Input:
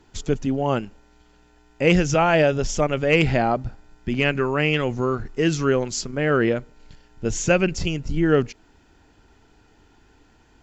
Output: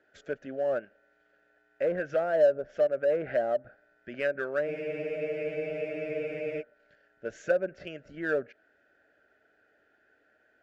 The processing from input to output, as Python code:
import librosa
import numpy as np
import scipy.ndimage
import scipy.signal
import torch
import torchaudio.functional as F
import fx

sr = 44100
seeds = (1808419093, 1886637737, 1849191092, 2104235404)

p1 = fx.double_bandpass(x, sr, hz=970.0, octaves=1.4)
p2 = fx.env_lowpass_down(p1, sr, base_hz=840.0, full_db=-24.0)
p3 = np.clip(p2, -10.0 ** (-31.5 / 20.0), 10.0 ** (-31.5 / 20.0))
p4 = p2 + F.gain(torch.from_numpy(p3), -9.0).numpy()
y = fx.spec_freeze(p4, sr, seeds[0], at_s=4.69, hold_s=1.91)